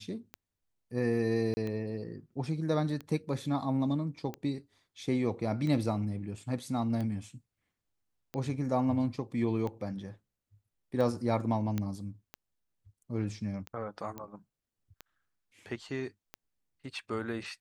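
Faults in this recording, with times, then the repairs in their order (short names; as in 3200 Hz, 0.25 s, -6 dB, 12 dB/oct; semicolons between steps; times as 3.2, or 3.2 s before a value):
tick 45 rpm -25 dBFS
1.54–1.57 gap 30 ms
11.78 pop -19 dBFS
14.18 pop -26 dBFS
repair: de-click; interpolate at 1.54, 30 ms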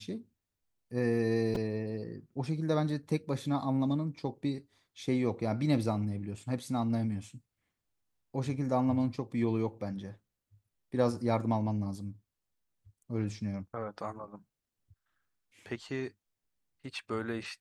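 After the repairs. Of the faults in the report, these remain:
14.18 pop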